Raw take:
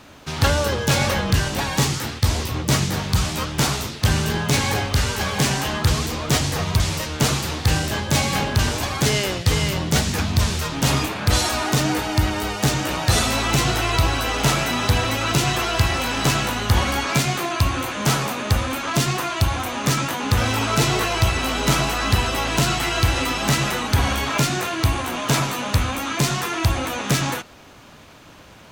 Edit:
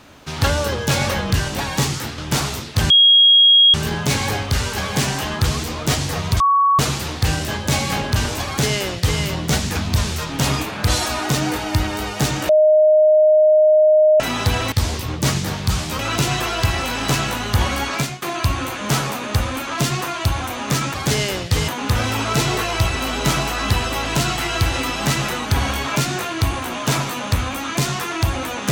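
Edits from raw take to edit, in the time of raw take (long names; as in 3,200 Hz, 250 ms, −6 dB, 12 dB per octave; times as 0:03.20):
0:02.18–0:03.45: move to 0:15.15
0:04.17: insert tone 3,280 Hz −7.5 dBFS 0.84 s
0:06.83–0:07.22: beep over 1,120 Hz −11.5 dBFS
0:08.89–0:09.63: duplicate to 0:20.10
0:12.92–0:14.63: beep over 617 Hz −9 dBFS
0:17.10–0:17.38: fade out, to −20.5 dB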